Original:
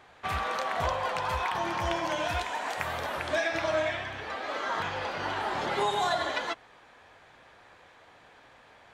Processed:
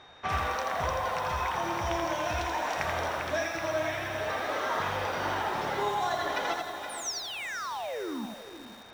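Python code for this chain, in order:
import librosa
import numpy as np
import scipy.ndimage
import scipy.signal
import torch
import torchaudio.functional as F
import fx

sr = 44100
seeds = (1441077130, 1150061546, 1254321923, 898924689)

y = fx.spec_paint(x, sr, seeds[0], shape='fall', start_s=6.89, length_s=1.37, low_hz=200.0, high_hz=10000.0, level_db=-39.0)
y = fx.peak_eq(y, sr, hz=5700.0, db=13.0, octaves=0.21)
y = y + 10.0 ** (-13.5 / 20.0) * np.pad(y, (int(471 * sr / 1000.0), 0))[:len(y)]
y = y + 10.0 ** (-53.0 / 20.0) * np.sin(2.0 * np.pi * 3700.0 * np.arange(len(y)) / sr)
y = fx.high_shelf(y, sr, hz=4100.0, db=-10.0)
y = fx.echo_diffused(y, sr, ms=505, feedback_pct=42, wet_db=-15.5)
y = fx.rider(y, sr, range_db=3, speed_s=0.5)
y = fx.echo_crushed(y, sr, ms=83, feedback_pct=35, bits=8, wet_db=-4)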